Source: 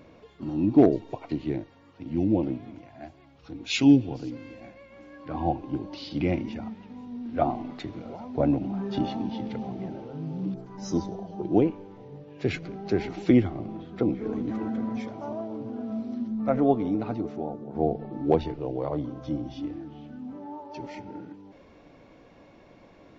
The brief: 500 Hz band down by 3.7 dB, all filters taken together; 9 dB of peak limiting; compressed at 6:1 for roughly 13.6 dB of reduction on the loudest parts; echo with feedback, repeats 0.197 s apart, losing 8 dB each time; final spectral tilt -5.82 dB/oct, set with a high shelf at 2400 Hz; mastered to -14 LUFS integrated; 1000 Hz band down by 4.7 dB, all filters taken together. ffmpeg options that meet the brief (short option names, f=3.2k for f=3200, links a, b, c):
-af "equalizer=f=500:t=o:g=-4,equalizer=f=1k:t=o:g=-6,highshelf=f=2.4k:g=6,acompressor=threshold=-29dB:ratio=6,alimiter=level_in=2.5dB:limit=-24dB:level=0:latency=1,volume=-2.5dB,aecho=1:1:197|394|591|788|985:0.398|0.159|0.0637|0.0255|0.0102,volume=23dB"